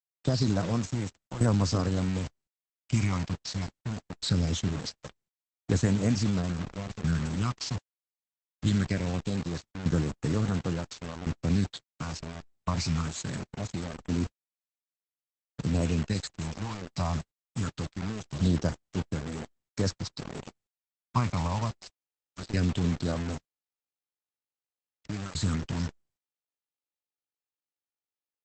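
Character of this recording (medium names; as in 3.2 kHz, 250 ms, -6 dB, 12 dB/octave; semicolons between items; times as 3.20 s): phasing stages 8, 0.22 Hz, lowest notch 420–4400 Hz; tremolo saw down 0.71 Hz, depth 85%; a quantiser's noise floor 6-bit, dither none; Opus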